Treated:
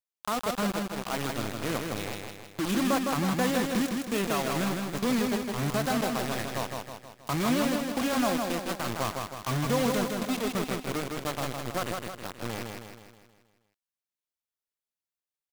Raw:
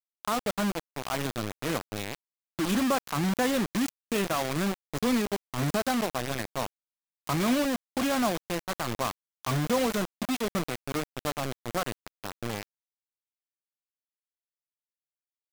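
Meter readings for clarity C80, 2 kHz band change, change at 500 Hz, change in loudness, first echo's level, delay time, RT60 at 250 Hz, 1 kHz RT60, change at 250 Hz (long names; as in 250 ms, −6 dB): no reverb audible, +0.5 dB, +0.5 dB, 0.0 dB, −4.0 dB, 159 ms, no reverb audible, no reverb audible, +0.5 dB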